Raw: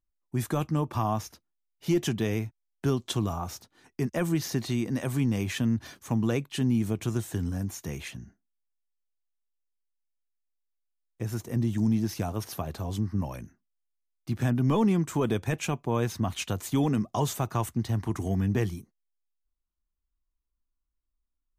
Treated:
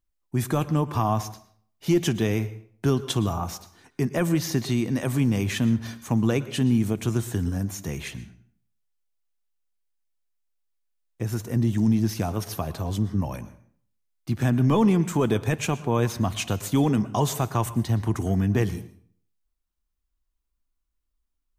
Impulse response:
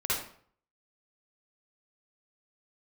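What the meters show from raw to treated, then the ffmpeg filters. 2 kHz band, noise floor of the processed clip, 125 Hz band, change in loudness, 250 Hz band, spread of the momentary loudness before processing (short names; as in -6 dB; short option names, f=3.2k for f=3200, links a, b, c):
+4.0 dB, -77 dBFS, +4.0 dB, +4.0 dB, +4.0 dB, 10 LU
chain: -filter_complex "[0:a]asplit=2[a][b];[1:a]atrim=start_sample=2205,adelay=58[c];[b][c]afir=irnorm=-1:irlink=0,volume=-23dB[d];[a][d]amix=inputs=2:normalize=0,volume=4dB"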